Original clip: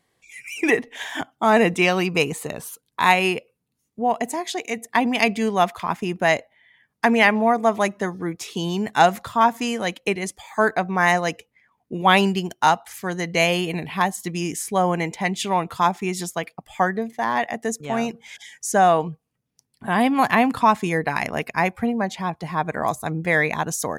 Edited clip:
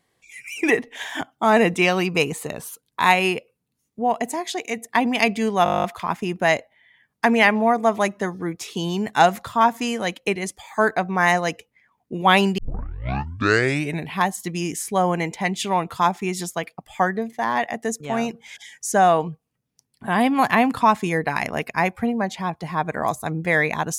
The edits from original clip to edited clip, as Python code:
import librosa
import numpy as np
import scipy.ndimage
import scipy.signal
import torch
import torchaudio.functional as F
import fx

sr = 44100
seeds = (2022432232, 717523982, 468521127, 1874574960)

y = fx.edit(x, sr, fx.stutter(start_s=5.64, slice_s=0.02, count=11),
    fx.tape_start(start_s=12.38, length_s=1.46), tone=tone)